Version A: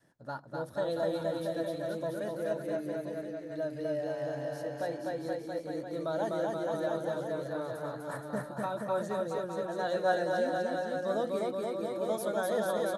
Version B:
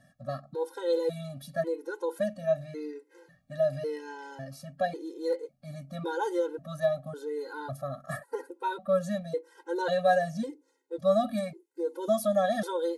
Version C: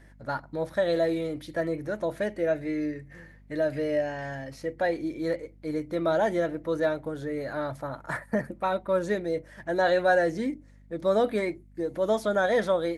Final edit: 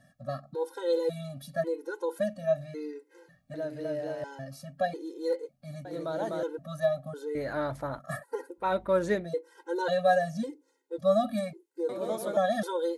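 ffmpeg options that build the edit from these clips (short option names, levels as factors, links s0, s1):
-filter_complex "[0:a]asplit=3[s0][s1][s2];[2:a]asplit=2[s3][s4];[1:a]asplit=6[s5][s6][s7][s8][s9][s10];[s5]atrim=end=3.542[s11];[s0]atrim=start=3.538:end=4.242[s12];[s6]atrim=start=4.238:end=5.852[s13];[s1]atrim=start=5.848:end=6.432[s14];[s7]atrim=start=6.428:end=7.352[s15];[s3]atrim=start=7.348:end=7.992[s16];[s8]atrim=start=7.988:end=8.73[s17];[s4]atrim=start=8.57:end=9.3[s18];[s9]atrim=start=9.14:end=11.892[s19];[s2]atrim=start=11.888:end=12.372[s20];[s10]atrim=start=12.368[s21];[s11][s12]acrossfade=d=0.004:c1=hsin:c2=hsin[s22];[s22][s13]acrossfade=d=0.004:c1=hsin:c2=hsin[s23];[s23][s14]acrossfade=d=0.004:c1=hsin:c2=hsin[s24];[s24][s15]acrossfade=d=0.004:c1=hsin:c2=hsin[s25];[s25][s16]acrossfade=d=0.004:c1=hsin:c2=hsin[s26];[s26][s17]acrossfade=d=0.004:c1=hsin:c2=hsin[s27];[s27][s18]acrossfade=d=0.16:c1=tri:c2=tri[s28];[s28][s19]acrossfade=d=0.16:c1=tri:c2=tri[s29];[s29][s20]acrossfade=d=0.004:c1=hsin:c2=hsin[s30];[s30][s21]acrossfade=d=0.004:c1=hsin:c2=hsin"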